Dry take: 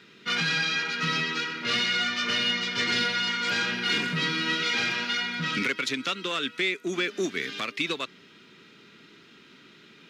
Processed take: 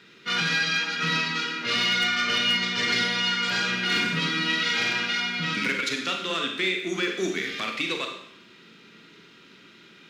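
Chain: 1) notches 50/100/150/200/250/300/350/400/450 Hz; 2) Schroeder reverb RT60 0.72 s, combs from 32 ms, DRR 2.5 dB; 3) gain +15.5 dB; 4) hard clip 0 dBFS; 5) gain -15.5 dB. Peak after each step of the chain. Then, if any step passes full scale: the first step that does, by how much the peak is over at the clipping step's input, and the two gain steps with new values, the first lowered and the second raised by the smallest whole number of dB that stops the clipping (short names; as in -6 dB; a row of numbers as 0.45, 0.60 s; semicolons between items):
-14.0, -10.5, +5.0, 0.0, -15.5 dBFS; step 3, 5.0 dB; step 3 +10.5 dB, step 5 -10.5 dB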